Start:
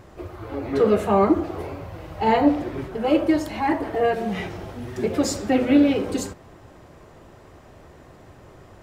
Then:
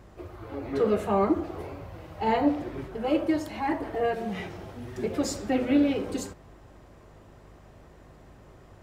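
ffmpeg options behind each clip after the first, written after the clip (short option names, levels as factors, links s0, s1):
-af "aeval=exprs='val(0)+0.00398*(sin(2*PI*50*n/s)+sin(2*PI*2*50*n/s)/2+sin(2*PI*3*50*n/s)/3+sin(2*PI*4*50*n/s)/4+sin(2*PI*5*50*n/s)/5)':c=same,volume=0.501"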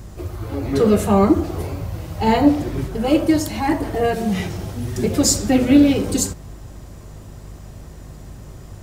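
-af "bass=f=250:g=10,treble=f=4000:g=14,volume=2.11"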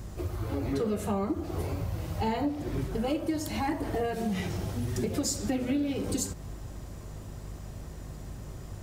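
-af "acompressor=threshold=0.0708:ratio=6,volume=0.631"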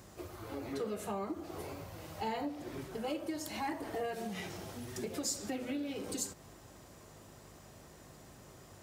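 -af "highpass=f=420:p=1,volume=0.596"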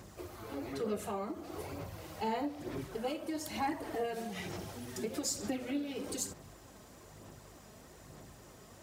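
-af "aphaser=in_gain=1:out_gain=1:delay=4.7:decay=0.36:speed=1.1:type=sinusoidal"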